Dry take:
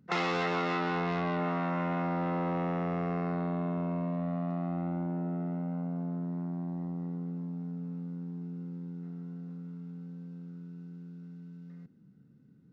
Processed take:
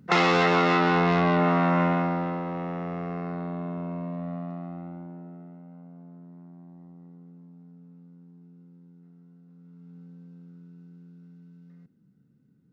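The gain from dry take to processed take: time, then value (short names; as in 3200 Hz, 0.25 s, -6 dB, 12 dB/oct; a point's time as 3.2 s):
1.83 s +9.5 dB
2.44 s -0.5 dB
4.33 s -0.5 dB
5.6 s -12 dB
9.45 s -12 dB
9.97 s -3.5 dB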